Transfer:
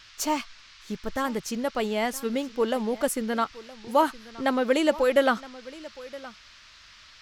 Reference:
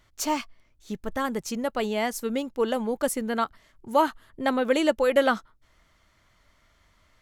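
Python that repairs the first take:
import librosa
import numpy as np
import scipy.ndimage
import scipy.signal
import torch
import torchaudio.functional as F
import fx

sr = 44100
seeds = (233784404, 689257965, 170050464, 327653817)

y = fx.noise_reduce(x, sr, print_start_s=6.39, print_end_s=6.89, reduce_db=12.0)
y = fx.fix_echo_inverse(y, sr, delay_ms=968, level_db=-19.0)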